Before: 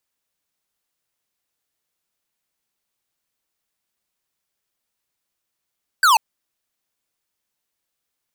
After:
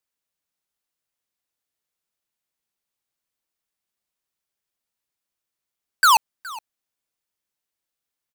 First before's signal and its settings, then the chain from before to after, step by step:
laser zap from 1.6 kHz, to 830 Hz, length 0.14 s square, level -13 dB
waveshaping leveller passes 3; delay 418 ms -20 dB

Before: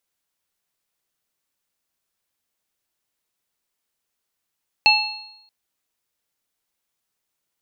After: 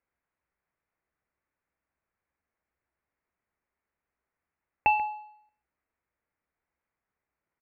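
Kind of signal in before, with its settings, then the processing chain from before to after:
sine partials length 0.63 s, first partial 847 Hz, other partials 2.66/4.29 kHz, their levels 5/2.5 dB, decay 0.69 s, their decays 0.62/0.90 s, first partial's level -16 dB
steep low-pass 2.3 kHz 48 dB/octave; peaking EQ 67 Hz +11 dB 0.45 oct; delay 137 ms -16 dB

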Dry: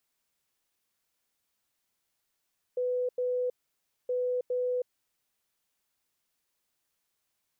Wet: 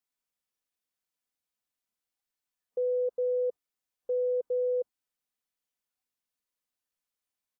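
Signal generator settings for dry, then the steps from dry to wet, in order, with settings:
beep pattern sine 498 Hz, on 0.32 s, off 0.09 s, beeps 2, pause 0.59 s, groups 2, -26.5 dBFS
spectral noise reduction 11 dB; dynamic bell 590 Hz, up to -5 dB, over -49 dBFS, Q 6.6; comb 4 ms, depth 35%

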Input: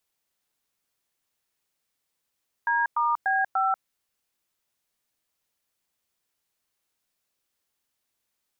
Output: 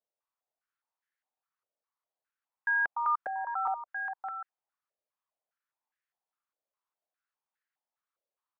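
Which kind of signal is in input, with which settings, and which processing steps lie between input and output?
DTMF "D*B5", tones 189 ms, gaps 105 ms, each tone -23.5 dBFS
on a send: delay 686 ms -5.5 dB; on the sum: step-sequenced band-pass 4.9 Hz 570–1700 Hz

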